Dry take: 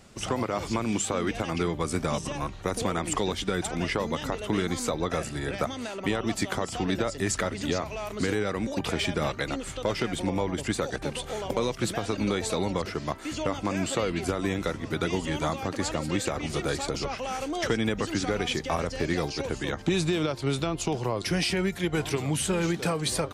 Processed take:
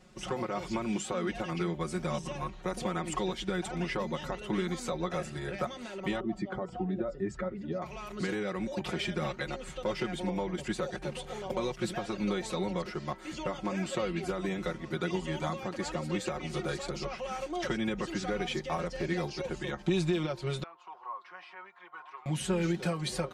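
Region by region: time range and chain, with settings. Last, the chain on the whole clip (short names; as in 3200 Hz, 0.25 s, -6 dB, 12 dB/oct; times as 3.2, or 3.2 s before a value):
6.2–7.82 spectral contrast raised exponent 1.5 + LPF 1200 Hz 6 dB/oct + de-hum 242.9 Hz, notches 22
20.63–22.26 ladder band-pass 1200 Hz, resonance 45% + bell 1100 Hz +8 dB 0.58 oct
whole clip: high shelf 6800 Hz -9 dB; comb 5.5 ms, depth 92%; gain -7.5 dB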